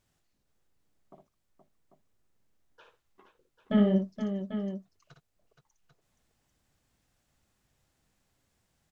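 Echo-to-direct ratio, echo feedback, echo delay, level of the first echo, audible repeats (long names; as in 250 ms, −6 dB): −3.0 dB, repeats not evenly spaced, 58 ms, −6.0 dB, 3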